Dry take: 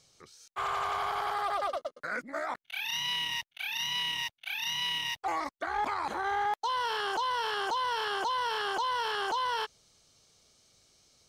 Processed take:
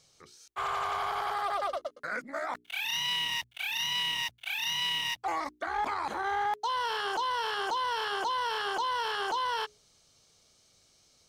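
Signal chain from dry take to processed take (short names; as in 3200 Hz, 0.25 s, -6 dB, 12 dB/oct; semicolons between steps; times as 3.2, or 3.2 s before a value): 2.53–5.14 G.711 law mismatch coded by mu; notches 60/120/180/240/300/360/420 Hz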